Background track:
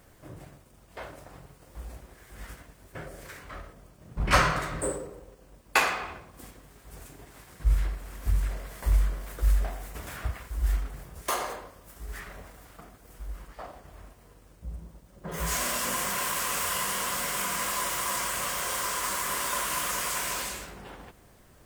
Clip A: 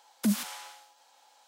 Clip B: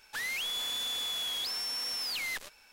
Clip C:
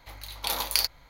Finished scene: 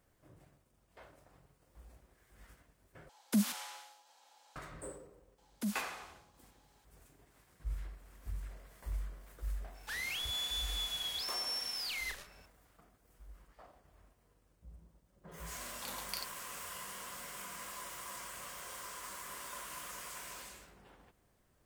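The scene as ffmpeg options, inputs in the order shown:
ffmpeg -i bed.wav -i cue0.wav -i cue1.wav -i cue2.wav -filter_complex "[1:a]asplit=2[link_01][link_02];[0:a]volume=-16dB[link_03];[2:a]asplit=2[link_04][link_05];[link_05]adelay=35,volume=-5.5dB[link_06];[link_04][link_06]amix=inputs=2:normalize=0[link_07];[link_03]asplit=2[link_08][link_09];[link_08]atrim=end=3.094[link_10];[link_01]atrim=end=1.47,asetpts=PTS-STARTPTS,volume=-3.5dB[link_11];[link_09]atrim=start=4.556[link_12];[link_02]atrim=end=1.47,asetpts=PTS-STARTPTS,volume=-10.5dB,afade=type=in:duration=0.004:curve=hsin,afade=type=out:start_time=1.466:duration=0.004:curve=hsin,adelay=5380[link_13];[link_07]atrim=end=2.72,asetpts=PTS-STARTPTS,volume=-5.5dB,afade=type=in:duration=0.004:curve=hsin,afade=type=out:start_time=2.716:duration=0.004:curve=hsin,adelay=9740[link_14];[3:a]atrim=end=1.09,asetpts=PTS-STARTPTS,volume=-17.5dB,afade=type=in:duration=0.004:curve=hsin,afade=type=out:start_time=1.086:duration=0.004:curve=hsin,adelay=15380[link_15];[link_10][link_11]acrossfade=duration=0.004:curve1=hsin:curve2=hsin[link_16];[link_16][link_12]acrossfade=duration=0.004:curve1=hsin:curve2=hsin[link_17];[link_17][link_13][link_14][link_15]amix=inputs=4:normalize=0" out.wav

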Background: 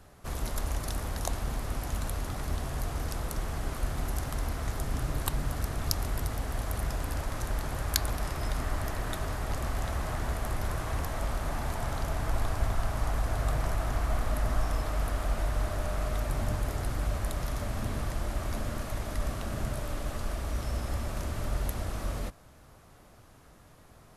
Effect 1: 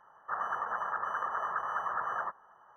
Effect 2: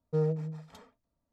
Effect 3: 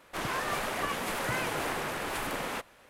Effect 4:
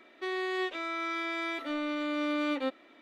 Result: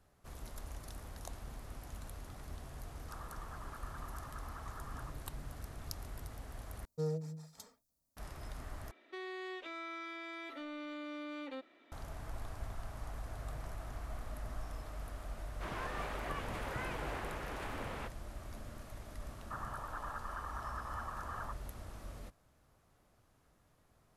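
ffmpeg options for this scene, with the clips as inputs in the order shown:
ffmpeg -i bed.wav -i cue0.wav -i cue1.wav -i cue2.wav -i cue3.wav -filter_complex "[1:a]asplit=2[link_01][link_02];[0:a]volume=-14.5dB[link_03];[2:a]aexciter=amount=7.1:drive=3.9:freq=4200[link_04];[4:a]acompressor=threshold=-33dB:ratio=6:attack=2.2:release=98:knee=1:detection=peak[link_05];[3:a]lowpass=frequency=2500:poles=1[link_06];[link_02]alimiter=level_in=4dB:limit=-24dB:level=0:latency=1:release=302,volume=-4dB[link_07];[link_03]asplit=3[link_08][link_09][link_10];[link_08]atrim=end=6.854[link_11];[link_04]atrim=end=1.32,asetpts=PTS-STARTPTS,volume=-8dB[link_12];[link_09]atrim=start=8.166:end=8.914[link_13];[link_05]atrim=end=3.01,asetpts=PTS-STARTPTS,volume=-7.5dB[link_14];[link_10]atrim=start=11.916[link_15];[link_01]atrim=end=2.76,asetpts=PTS-STARTPTS,volume=-17.5dB,afade=type=in:duration=0.004:curve=hsin,afade=type=out:start_time=2.756:duration=0.004:curve=hsin,adelay=2800[link_16];[link_06]atrim=end=2.89,asetpts=PTS-STARTPTS,volume=-8.5dB,afade=type=in:duration=0.004:curve=hsin,afade=type=out:start_time=2.886:duration=0.004:curve=hsin,adelay=15470[link_17];[link_07]atrim=end=2.76,asetpts=PTS-STARTPTS,volume=-6dB,afade=type=in:duration=0.004:curve=hsin,afade=type=out:start_time=2.756:duration=0.004:curve=hsin,adelay=19220[link_18];[link_11][link_12]acrossfade=duration=0.004:curve1=hsin:curve2=hsin[link_19];[link_19][link_13]acrossfade=duration=0.004:curve1=hsin:curve2=hsin[link_20];[link_20][link_14]acrossfade=duration=0.004:curve1=hsin:curve2=hsin[link_21];[link_21][link_15]acrossfade=duration=0.004:curve1=hsin:curve2=hsin[link_22];[link_22][link_16][link_17][link_18]amix=inputs=4:normalize=0" out.wav

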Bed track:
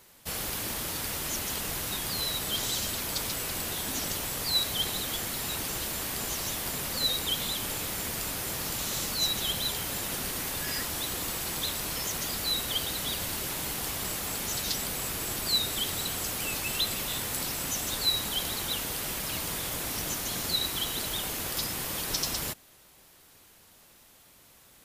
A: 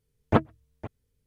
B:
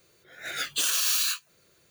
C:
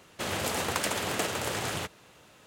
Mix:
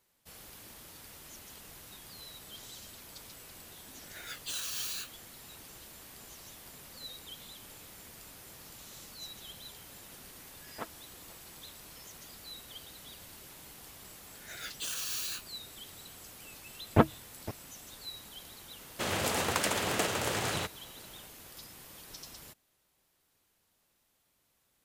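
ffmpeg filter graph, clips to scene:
ffmpeg -i bed.wav -i cue0.wav -i cue1.wav -i cue2.wav -filter_complex "[2:a]asplit=2[link_01][link_02];[1:a]asplit=2[link_03][link_04];[0:a]volume=-17.5dB[link_05];[link_03]highpass=frequency=1200:poles=1[link_06];[link_01]atrim=end=1.9,asetpts=PTS-STARTPTS,volume=-12.5dB,afade=type=in:duration=0.004:curve=hsin,afade=type=out:start_time=1.896:duration=0.004:curve=hsin,adelay=3700[link_07];[link_06]atrim=end=1.26,asetpts=PTS-STARTPTS,volume=-12.5dB,afade=type=in:duration=0.004:curve=hsin,afade=type=out:start_time=1.256:duration=0.004:curve=hsin,adelay=10460[link_08];[link_02]atrim=end=1.9,asetpts=PTS-STARTPTS,volume=-11.5dB,afade=type=in:duration=0.004:curve=hsin,afade=type=out:start_time=1.896:duration=0.004:curve=hsin,adelay=14040[link_09];[link_04]atrim=end=1.26,asetpts=PTS-STARTPTS,volume=-1.5dB,afade=type=in:duration=0.004:curve=hsin,afade=type=out:start_time=1.256:duration=0.004:curve=hsin,adelay=16640[link_10];[3:a]atrim=end=2.46,asetpts=PTS-STARTPTS,volume=-0.5dB,afade=type=in:duration=0.004:curve=hsin,afade=type=out:start_time=2.456:duration=0.004:curve=hsin,adelay=18800[link_11];[link_05][link_07][link_08][link_09][link_10][link_11]amix=inputs=6:normalize=0" out.wav

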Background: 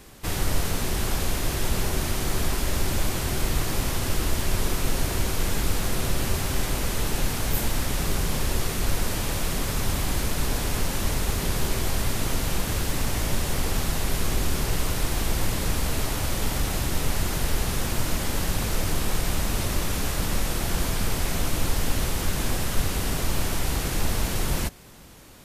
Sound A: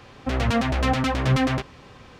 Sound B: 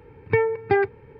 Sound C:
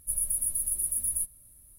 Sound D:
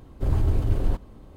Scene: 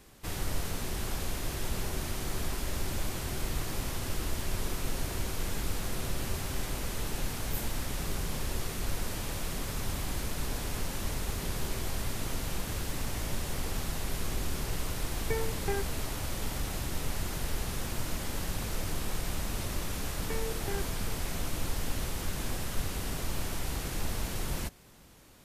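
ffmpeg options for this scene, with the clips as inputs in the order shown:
ffmpeg -i bed.wav -i cue0.wav -i cue1.wav -filter_complex "[2:a]asplit=2[link_01][link_02];[0:a]volume=-8.5dB[link_03];[link_02]acompressor=threshold=-25dB:ratio=6:attack=3.2:release=140:knee=1:detection=peak[link_04];[link_01]atrim=end=1.19,asetpts=PTS-STARTPTS,volume=-14.5dB,afade=type=in:duration=0.004:curve=hsin,afade=type=out:start_time=1.186:duration=0.004:curve=hsin,adelay=14970[link_05];[link_04]atrim=end=1.19,asetpts=PTS-STARTPTS,volume=-10dB,afade=type=in:duration=0.004:curve=hsin,afade=type=out:start_time=1.186:duration=0.004:curve=hsin,adelay=19970[link_06];[link_03][link_05][link_06]amix=inputs=3:normalize=0" out.wav

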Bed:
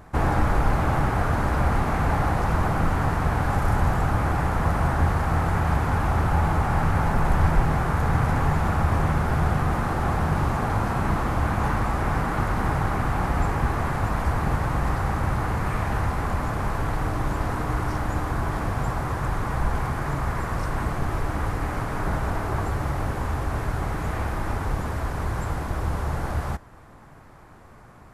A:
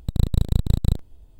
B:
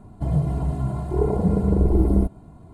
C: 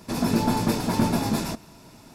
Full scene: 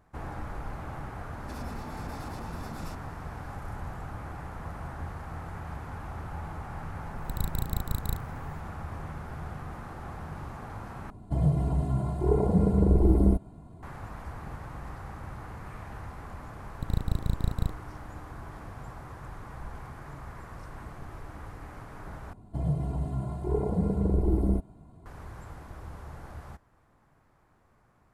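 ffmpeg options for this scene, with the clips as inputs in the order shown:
ffmpeg -i bed.wav -i cue0.wav -i cue1.wav -i cue2.wav -filter_complex "[1:a]asplit=2[link_01][link_02];[2:a]asplit=2[link_03][link_04];[0:a]volume=-16.5dB[link_05];[3:a]acompressor=threshold=-27dB:ratio=6:attack=3.2:release=140:knee=1:detection=peak[link_06];[link_01]aemphasis=mode=production:type=75fm[link_07];[link_05]asplit=3[link_08][link_09][link_10];[link_08]atrim=end=11.104[link_11];[link_03]atrim=end=2.73,asetpts=PTS-STARTPTS,volume=-3dB[link_12];[link_09]atrim=start=13.826:end=22.334[link_13];[link_04]atrim=end=2.73,asetpts=PTS-STARTPTS,volume=-7dB[link_14];[link_10]atrim=start=25.056[link_15];[link_06]atrim=end=2.14,asetpts=PTS-STARTPTS,volume=-13dB,afade=type=in:duration=0.004:curve=hsin,afade=type=out:start_time=2.136:duration=0.004:curve=hsin,adelay=1400[link_16];[link_07]atrim=end=1.39,asetpts=PTS-STARTPTS,volume=-11dB,afade=type=in:duration=0.004:curve=hsin,afade=type=out:start_time=1.386:duration=0.004:curve=hsin,adelay=7210[link_17];[link_02]atrim=end=1.39,asetpts=PTS-STARTPTS,volume=-8dB,afade=type=in:duration=0.004:curve=hsin,afade=type=out:start_time=1.386:duration=0.004:curve=hsin,adelay=16740[link_18];[link_11][link_12]acrossfade=duration=0.004:curve1=hsin:curve2=hsin[link_19];[link_19][link_13]acrossfade=duration=0.004:curve1=hsin:curve2=hsin[link_20];[link_20][link_14]acrossfade=duration=0.004:curve1=hsin:curve2=hsin[link_21];[link_21][link_15]acrossfade=duration=0.004:curve1=hsin:curve2=hsin[link_22];[link_22][link_16][link_17][link_18]amix=inputs=4:normalize=0" out.wav

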